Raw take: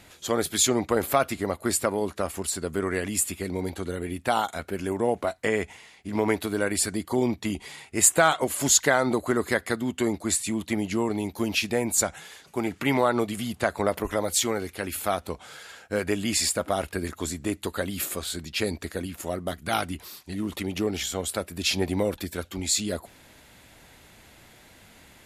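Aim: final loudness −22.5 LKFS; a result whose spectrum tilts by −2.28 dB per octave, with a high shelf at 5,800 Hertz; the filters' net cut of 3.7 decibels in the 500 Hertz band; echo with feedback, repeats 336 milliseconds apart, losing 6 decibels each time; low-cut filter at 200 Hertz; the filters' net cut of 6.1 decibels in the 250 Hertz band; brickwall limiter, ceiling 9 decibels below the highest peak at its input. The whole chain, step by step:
high-pass filter 200 Hz
parametric band 250 Hz −5 dB
parametric band 500 Hz −3 dB
high-shelf EQ 5,800 Hz −5.5 dB
brickwall limiter −16 dBFS
repeating echo 336 ms, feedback 50%, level −6 dB
level +7.5 dB

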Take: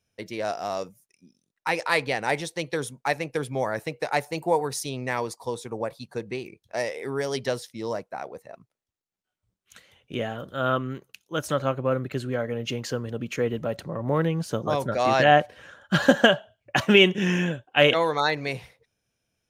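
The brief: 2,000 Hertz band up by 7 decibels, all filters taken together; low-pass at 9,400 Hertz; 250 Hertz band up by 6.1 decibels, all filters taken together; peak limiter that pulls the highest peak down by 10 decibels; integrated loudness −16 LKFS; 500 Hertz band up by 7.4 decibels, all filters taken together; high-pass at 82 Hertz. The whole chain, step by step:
high-pass filter 82 Hz
low-pass filter 9,400 Hz
parametric band 250 Hz +6 dB
parametric band 500 Hz +7 dB
parametric band 2,000 Hz +8.5 dB
level +5.5 dB
brickwall limiter 0 dBFS

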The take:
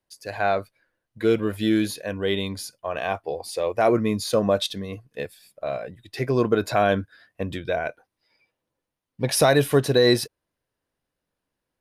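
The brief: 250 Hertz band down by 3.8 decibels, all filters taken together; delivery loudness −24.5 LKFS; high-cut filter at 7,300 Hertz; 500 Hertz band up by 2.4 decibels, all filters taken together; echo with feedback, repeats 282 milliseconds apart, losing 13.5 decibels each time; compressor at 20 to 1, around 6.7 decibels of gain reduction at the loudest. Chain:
low-pass filter 7,300 Hz
parametric band 250 Hz −8 dB
parametric band 500 Hz +5 dB
downward compressor 20 to 1, threshold −18 dBFS
repeating echo 282 ms, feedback 21%, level −13.5 dB
level +2 dB

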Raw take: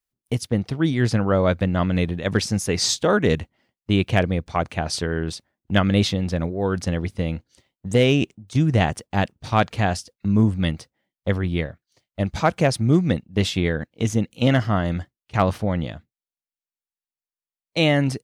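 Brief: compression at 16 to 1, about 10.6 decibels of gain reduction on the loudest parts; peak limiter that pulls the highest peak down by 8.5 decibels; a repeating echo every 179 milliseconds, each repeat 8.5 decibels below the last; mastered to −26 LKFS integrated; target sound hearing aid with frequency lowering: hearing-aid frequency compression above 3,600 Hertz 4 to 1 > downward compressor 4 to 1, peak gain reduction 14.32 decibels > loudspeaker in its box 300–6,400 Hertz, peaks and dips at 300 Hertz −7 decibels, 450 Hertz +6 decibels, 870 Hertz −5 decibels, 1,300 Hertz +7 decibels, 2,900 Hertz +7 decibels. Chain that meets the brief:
downward compressor 16 to 1, threshold −23 dBFS
brickwall limiter −19.5 dBFS
repeating echo 179 ms, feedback 38%, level −8.5 dB
hearing-aid frequency compression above 3,600 Hz 4 to 1
downward compressor 4 to 1, threshold −40 dBFS
loudspeaker in its box 300–6,400 Hz, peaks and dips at 300 Hz −7 dB, 450 Hz +6 dB, 870 Hz −5 dB, 1,300 Hz +7 dB, 2,900 Hz +7 dB
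level +18 dB

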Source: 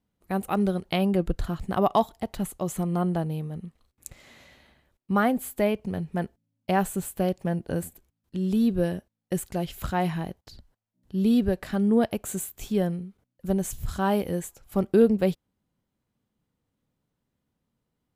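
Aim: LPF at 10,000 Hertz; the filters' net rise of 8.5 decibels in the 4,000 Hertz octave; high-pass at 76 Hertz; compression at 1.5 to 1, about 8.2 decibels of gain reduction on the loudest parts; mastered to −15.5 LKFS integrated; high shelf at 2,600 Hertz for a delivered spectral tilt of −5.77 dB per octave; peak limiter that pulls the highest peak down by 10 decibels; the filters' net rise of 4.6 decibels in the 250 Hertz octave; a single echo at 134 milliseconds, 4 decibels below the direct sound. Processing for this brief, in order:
high-pass filter 76 Hz
low-pass filter 10,000 Hz
parametric band 250 Hz +6 dB
high-shelf EQ 2,600 Hz +3.5 dB
parametric band 4,000 Hz +8.5 dB
downward compressor 1.5 to 1, threshold −35 dBFS
brickwall limiter −20 dBFS
single-tap delay 134 ms −4 dB
level +15 dB

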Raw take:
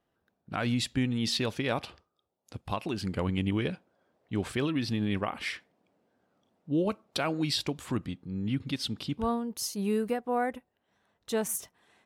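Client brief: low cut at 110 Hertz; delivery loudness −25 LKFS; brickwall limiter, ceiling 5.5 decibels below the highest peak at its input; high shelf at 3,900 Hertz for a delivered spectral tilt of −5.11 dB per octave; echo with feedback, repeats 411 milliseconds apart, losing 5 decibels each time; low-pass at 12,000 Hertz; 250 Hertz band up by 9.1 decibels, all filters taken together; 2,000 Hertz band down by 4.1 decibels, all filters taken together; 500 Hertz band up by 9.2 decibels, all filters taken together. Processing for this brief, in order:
high-pass filter 110 Hz
low-pass filter 12,000 Hz
parametric band 250 Hz +9 dB
parametric band 500 Hz +8.5 dB
parametric band 2,000 Hz −8.5 dB
high-shelf EQ 3,900 Hz +8.5 dB
brickwall limiter −14.5 dBFS
repeating echo 411 ms, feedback 56%, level −5 dB

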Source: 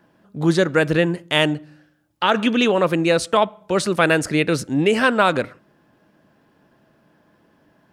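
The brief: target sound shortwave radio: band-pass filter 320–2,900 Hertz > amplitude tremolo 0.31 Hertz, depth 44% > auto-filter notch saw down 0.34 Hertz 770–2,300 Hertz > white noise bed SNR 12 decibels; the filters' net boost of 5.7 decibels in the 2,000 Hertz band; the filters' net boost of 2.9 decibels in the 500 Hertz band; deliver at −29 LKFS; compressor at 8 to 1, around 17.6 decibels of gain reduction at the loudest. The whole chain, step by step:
parametric band 500 Hz +4 dB
parametric band 2,000 Hz +8.5 dB
downward compressor 8 to 1, threshold −27 dBFS
band-pass filter 320–2,900 Hz
amplitude tremolo 0.31 Hz, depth 44%
auto-filter notch saw down 0.34 Hz 770–2,300 Hz
white noise bed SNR 12 dB
level +10 dB

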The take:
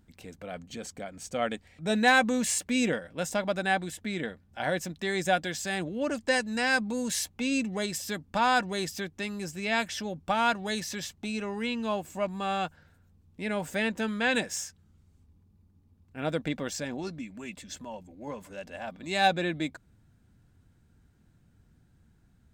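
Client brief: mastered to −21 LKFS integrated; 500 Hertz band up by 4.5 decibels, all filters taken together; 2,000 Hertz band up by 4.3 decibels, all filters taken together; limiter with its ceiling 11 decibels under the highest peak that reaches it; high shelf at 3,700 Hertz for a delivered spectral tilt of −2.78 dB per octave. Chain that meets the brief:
parametric band 500 Hz +5 dB
parametric band 2,000 Hz +3.5 dB
high-shelf EQ 3,700 Hz +7.5 dB
level +8 dB
brickwall limiter −8.5 dBFS

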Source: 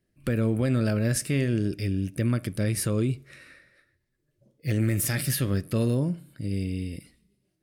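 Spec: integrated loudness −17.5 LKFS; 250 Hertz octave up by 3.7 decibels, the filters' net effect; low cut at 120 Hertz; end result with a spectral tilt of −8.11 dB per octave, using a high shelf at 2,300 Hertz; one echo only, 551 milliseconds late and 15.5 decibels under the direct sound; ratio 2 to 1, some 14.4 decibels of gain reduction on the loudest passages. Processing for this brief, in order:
high-pass filter 120 Hz
parametric band 250 Hz +5 dB
high-shelf EQ 2,300 Hz −5.5 dB
downward compressor 2 to 1, threshold −46 dBFS
single-tap delay 551 ms −15.5 dB
level +22 dB

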